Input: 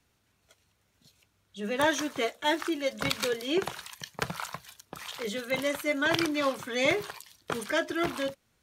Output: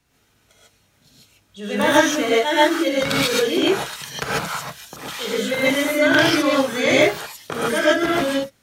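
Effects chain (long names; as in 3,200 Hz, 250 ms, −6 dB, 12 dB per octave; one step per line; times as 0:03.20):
reverb whose tail is shaped and stops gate 170 ms rising, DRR −7 dB
level +3 dB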